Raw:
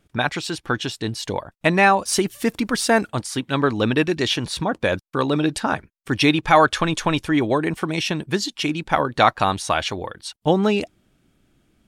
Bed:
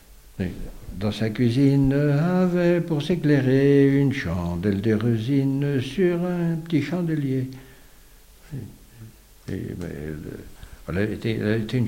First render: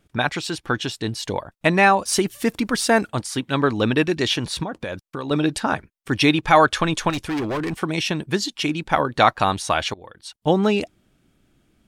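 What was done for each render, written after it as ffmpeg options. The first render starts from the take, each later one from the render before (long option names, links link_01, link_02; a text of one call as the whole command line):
ffmpeg -i in.wav -filter_complex "[0:a]asettb=1/sr,asplit=3[link_01][link_02][link_03];[link_01]atrim=end=4.634[link_04];[link_02]atrim=start=4.63:end=5.31,asetpts=PTS-STARTPTS,afade=type=in:duration=0.004:curve=qsin,afade=type=out:start_time=0.676:duration=0.004:curve=qsin,acompressor=threshold=-26dB:ratio=4:attack=3.2:release=140:knee=1:detection=peak[link_05];[link_03]atrim=start=5.306[link_06];[link_04][link_05]acrossfade=duration=0.004:curve1=hsin:curve2=qsin[link_07];[link_07][link_06]acrossfade=duration=0.004:curve1=qsin:curve2=hsin,asettb=1/sr,asplit=3[link_08][link_09][link_10];[link_08]atrim=end=7.104[link_11];[link_09]atrim=start=7.1:end=7.75,asetpts=PTS-STARTPTS,afade=type=in:duration=0.004:curve=qsin,afade=type=out:start_time=0.646:duration=0.004:curve=qsin,volume=22dB,asoftclip=hard,volume=-22dB[link_12];[link_10]atrim=start=7.746[link_13];[link_11][link_12]acrossfade=duration=0.004:curve1=hsin:curve2=qsin[link_14];[link_14][link_13]acrossfade=duration=0.004:curve1=qsin:curve2=hsin,asplit=2[link_15][link_16];[link_15]atrim=end=9.94,asetpts=PTS-STARTPTS,afade=type=out:start_time=9.936:duration=0.004:curve=hsin:silence=0.0944061[link_17];[link_16]atrim=start=9.94,asetpts=PTS-STARTPTS,afade=type=in:duration=0.6:silence=0.0944061[link_18];[link_17][link_18]concat=n=2:v=0:a=1" out.wav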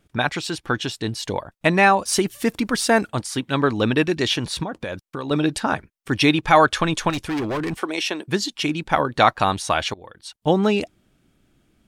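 ffmpeg -i in.wav -filter_complex "[0:a]asettb=1/sr,asplit=3[link_01][link_02][link_03];[link_01]atrim=end=7.814[link_04];[link_02]atrim=start=7.81:end=8.28,asetpts=PTS-STARTPTS,afade=type=in:duration=0.004:curve=qsin,afade=type=out:start_time=0.466:duration=0.004:curve=qsin,highpass=frequency=290:width=0.5412,highpass=frequency=290:width=1.3066[link_05];[link_03]atrim=start=8.276[link_06];[link_04][link_05]acrossfade=duration=0.004:curve1=hsin:curve2=qsin[link_07];[link_07][link_06]acrossfade=duration=0.004:curve1=qsin:curve2=hsin" out.wav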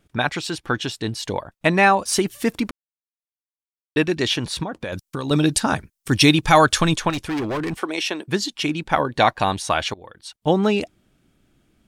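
ffmpeg -i in.wav -filter_complex "[0:a]asettb=1/sr,asplit=3[link_01][link_02][link_03];[link_01]atrim=end=4.924[link_04];[link_02]atrim=start=4.92:end=6.96,asetpts=PTS-STARTPTS,afade=type=in:duration=0.004:curve=qsin,afade=type=out:start_time=2.036:duration=0.004:curve=qsin,bass=frequency=250:gain=6,treble=frequency=4000:gain=11[link_05];[link_03]atrim=start=6.956[link_06];[link_04][link_05]acrossfade=duration=0.004:curve1=hsin:curve2=qsin[link_07];[link_07][link_06]acrossfade=duration=0.004:curve1=qsin:curve2=hsin,asettb=1/sr,asplit=3[link_08][link_09][link_10];[link_08]atrim=end=8.994[link_11];[link_09]atrim=start=8.99:end=9.64,asetpts=PTS-STARTPTS,afade=type=in:duration=0.004:curve=qsin,afade=type=out:start_time=0.646:duration=0.004:curve=qsin,bandreject=frequency=1300:width=5.9[link_12];[link_10]atrim=start=9.636[link_13];[link_11][link_12]acrossfade=duration=0.004:curve1=hsin:curve2=qsin[link_14];[link_14][link_13]acrossfade=duration=0.004:curve1=qsin:curve2=hsin,asplit=3[link_15][link_16][link_17];[link_15]atrim=end=2.71,asetpts=PTS-STARTPTS,afade=type=out:start_time=2.706:duration=0.004:curve=hsin[link_18];[link_16]atrim=start=2.71:end=3.96,asetpts=PTS-STARTPTS,volume=0[link_19];[link_17]atrim=start=3.96,asetpts=PTS-STARTPTS,afade=type=in:duration=0.004:curve=hsin[link_20];[link_18][link_19][link_20]concat=n=3:v=0:a=1" out.wav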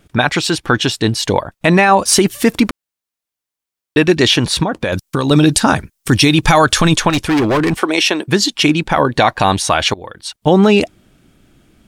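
ffmpeg -i in.wav -af "alimiter=level_in=11dB:limit=-1dB:release=50:level=0:latency=1" out.wav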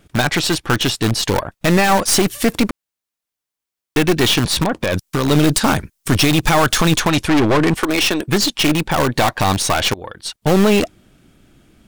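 ffmpeg -i in.wav -filter_complex "[0:a]asplit=2[link_01][link_02];[link_02]aeval=exprs='(mod(3.16*val(0)+1,2)-1)/3.16':channel_layout=same,volume=-7dB[link_03];[link_01][link_03]amix=inputs=2:normalize=0,aeval=exprs='(tanh(2.24*val(0)+0.65)-tanh(0.65))/2.24':channel_layout=same" out.wav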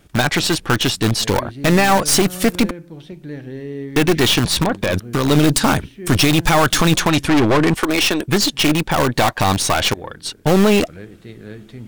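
ffmpeg -i in.wav -i bed.wav -filter_complex "[1:a]volume=-12.5dB[link_01];[0:a][link_01]amix=inputs=2:normalize=0" out.wav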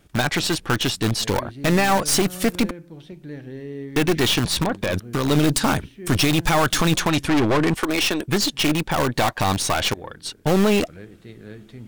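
ffmpeg -i in.wav -af "volume=-4.5dB" out.wav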